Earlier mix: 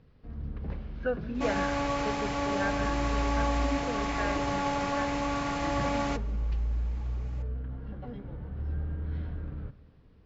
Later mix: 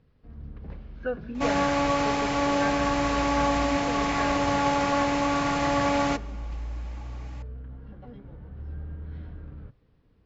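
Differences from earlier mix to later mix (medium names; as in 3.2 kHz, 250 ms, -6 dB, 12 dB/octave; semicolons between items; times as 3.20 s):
first sound: send off; second sound +6.0 dB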